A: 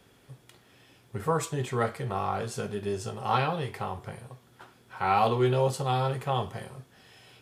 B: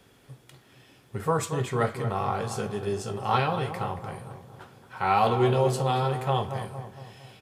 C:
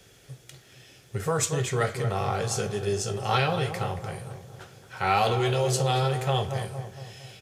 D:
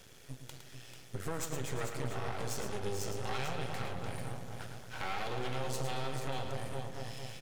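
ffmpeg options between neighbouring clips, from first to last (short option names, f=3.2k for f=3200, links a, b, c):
-filter_complex "[0:a]asplit=2[a][b];[b]adelay=229,lowpass=f=1.4k:p=1,volume=-8.5dB,asplit=2[c][d];[d]adelay=229,lowpass=f=1.4k:p=1,volume=0.54,asplit=2[e][f];[f]adelay=229,lowpass=f=1.4k:p=1,volume=0.54,asplit=2[g][h];[h]adelay=229,lowpass=f=1.4k:p=1,volume=0.54,asplit=2[i][j];[j]adelay=229,lowpass=f=1.4k:p=1,volume=0.54,asplit=2[k][l];[l]adelay=229,lowpass=f=1.4k:p=1,volume=0.54[m];[a][c][e][g][i][k][m]amix=inputs=7:normalize=0,volume=1.5dB"
-filter_complex "[0:a]equalizer=f=250:t=o:w=0.67:g=-10,equalizer=f=1k:t=o:w=0.67:g=-10,equalizer=f=6.3k:t=o:w=0.67:g=7,acrossover=split=830[a][b];[a]alimiter=limit=-23.5dB:level=0:latency=1[c];[c][b]amix=inputs=2:normalize=0,volume=4.5dB"
-filter_complex "[0:a]acompressor=threshold=-35dB:ratio=4,aeval=exprs='max(val(0),0)':c=same,asplit=2[a][b];[b]aecho=0:1:110|441:0.422|0.398[c];[a][c]amix=inputs=2:normalize=0,volume=1.5dB"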